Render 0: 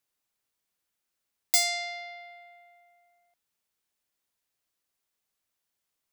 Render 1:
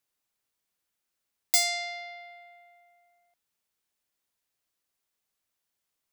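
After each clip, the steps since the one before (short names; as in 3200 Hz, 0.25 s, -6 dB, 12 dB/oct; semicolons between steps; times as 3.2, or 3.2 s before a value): nothing audible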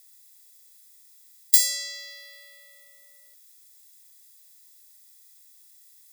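per-bin compression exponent 0.6; frequency shift -130 Hz; differentiator; gain +3.5 dB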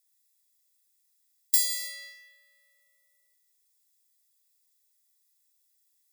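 gate -41 dBFS, range -12 dB; non-linear reverb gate 0.36 s falling, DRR 3 dB; gain -6.5 dB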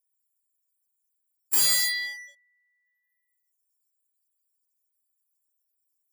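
spectral gate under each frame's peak -10 dB strong; limiter -20 dBFS, peak gain reduction 9 dB; sample leveller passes 3; gain +3.5 dB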